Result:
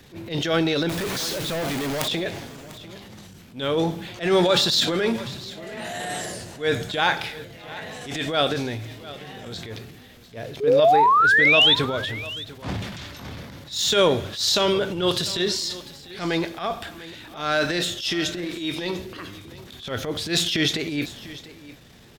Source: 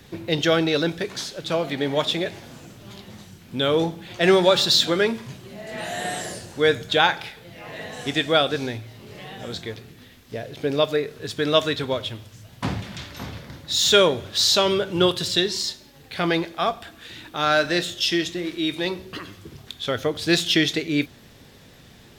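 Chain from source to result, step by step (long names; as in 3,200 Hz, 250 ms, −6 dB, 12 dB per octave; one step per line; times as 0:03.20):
0:10.60–0:11.75: sound drawn into the spectrogram rise 400–3,700 Hz −15 dBFS
transient designer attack −12 dB, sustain +6 dB
0:00.89–0:02.08: log-companded quantiser 2 bits
on a send: single-tap delay 697 ms −17.5 dB
on the sum: level −1 dB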